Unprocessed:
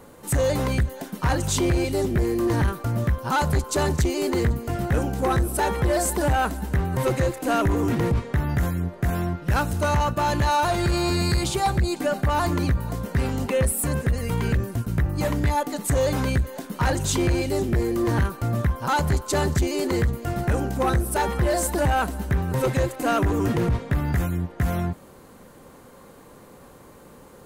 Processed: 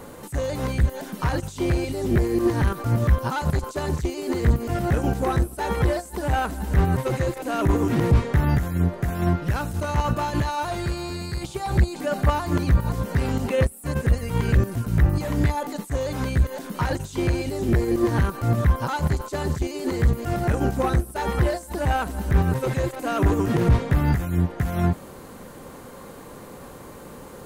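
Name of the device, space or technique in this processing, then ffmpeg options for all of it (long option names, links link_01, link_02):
de-esser from a sidechain: -filter_complex "[0:a]asplit=2[link_01][link_02];[link_02]highpass=frequency=5200:width=0.5412,highpass=frequency=5200:width=1.3066,apad=whole_len=1210959[link_03];[link_01][link_03]sidechaincompress=threshold=-51dB:ratio=6:attack=1.9:release=21,volume=6.5dB"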